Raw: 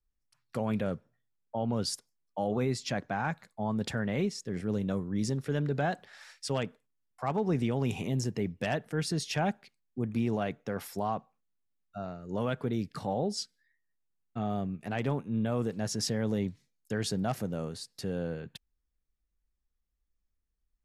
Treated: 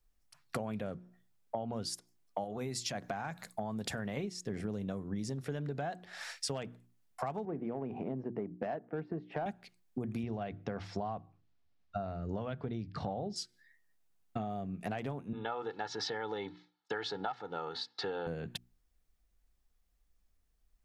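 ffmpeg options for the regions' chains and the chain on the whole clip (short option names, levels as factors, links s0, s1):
-filter_complex "[0:a]asettb=1/sr,asplit=3[s0][s1][s2];[s0]atrim=end=2.444[s3];[s1]atrim=start=2.44:end=4.17,asetpts=PTS-STARTPTS,afade=t=in:d=0.004:c=qsin,afade=t=out:st=1.726:d=0.004:c=qsin,acompressor=threshold=0.0141:ratio=2:attack=3.2:release=140:knee=1:detection=peak,aemphasis=mode=production:type=cd[s4];[s2]atrim=start=4.166[s5];[s3][s4]acrossfade=d=0.004:c1=hsin:c2=qsin[s6];[s6][s5]acrossfade=d=0.004:c1=qsin:c2=hsin,asettb=1/sr,asplit=3[s7][s8][s9];[s7]atrim=end=7.454[s10];[s8]atrim=start=7.45:end=9.46,asetpts=PTS-STARTPTS,afade=t=in:d=0.004:c=qsin,afade=t=out:st=2.006:d=0.004:c=qsin,highpass=230,lowpass=2200,adynamicsmooth=sensitivity=1:basefreq=1000[s11];[s9]atrim=start=9.456[s12];[s10][s11]acrossfade=d=0.004:c1=hsin:c2=qsin[s13];[s13][s12]acrossfade=d=0.004:c1=qsin:c2=hsin,asettb=1/sr,asplit=3[s14][s15][s16];[s14]atrim=end=10.234[s17];[s15]atrim=start=10.23:end=13.36,asetpts=PTS-STARTPTS,afade=t=in:d=0.004:c=qsin,afade=t=out:st=3.126:d=0.004:c=qsin,lowpass=f=5200:w=0.5412,lowpass=f=5200:w=1.3066,equalizer=f=65:w=1:g=14,bandreject=f=50:t=h:w=6,bandreject=f=100:t=h:w=6,bandreject=f=150:t=h:w=6[s18];[s16]atrim=start=13.356[s19];[s17][s18]acrossfade=d=0.004:c1=hsin:c2=qsin[s20];[s20][s19]acrossfade=d=0.004:c1=qsin:c2=hsin,asettb=1/sr,asplit=3[s21][s22][s23];[s21]atrim=end=15.334[s24];[s22]atrim=start=15.33:end=18.27,asetpts=PTS-STARTPTS,afade=t=in:d=0.004:c=qsin,afade=t=out:st=2.936:d=0.004:c=qsin,highpass=330,equalizer=f=380:t=q:w=4:g=-6,equalizer=f=560:t=q:w=4:g=-9,equalizer=f=870:t=q:w=4:g=9,equalizer=f=1400:t=q:w=4:g=7,equalizer=f=2500:t=q:w=4:g=-5,equalizer=f=3700:t=q:w=4:g=5,lowpass=f=4100:w=0.5412,lowpass=f=4100:w=1.3066,aecho=1:1:2.3:0.7,atrim=end_sample=129654[s25];[s23]atrim=start=18.266[s26];[s24][s25]acrossfade=d=0.004:c1=hsin:c2=qsin[s27];[s27][s26]acrossfade=d=0.004:c1=qsin:c2=hsin,equalizer=f=700:t=o:w=0.25:g=6,bandreject=f=60:t=h:w=6,bandreject=f=120:t=h:w=6,bandreject=f=180:t=h:w=6,bandreject=f=240:t=h:w=6,bandreject=f=300:t=h:w=6,bandreject=f=360:t=h:w=6,acompressor=threshold=0.00794:ratio=16,volume=2.51"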